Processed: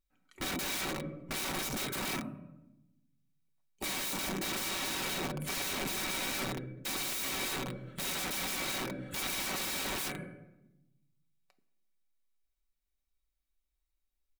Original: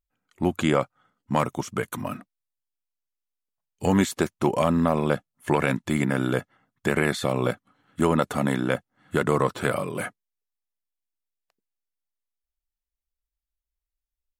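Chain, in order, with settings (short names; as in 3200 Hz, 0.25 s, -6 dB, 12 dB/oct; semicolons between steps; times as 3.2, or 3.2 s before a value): 7.05–9.46 high shelf 2000 Hz +4 dB; hard clip -17 dBFS, distortion -11 dB; shoebox room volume 330 m³, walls mixed, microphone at 0.36 m; wrapped overs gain 32.5 dB; comb 5.3 ms, depth 45%; small resonant body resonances 280/2300/3800 Hz, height 11 dB, ringing for 60 ms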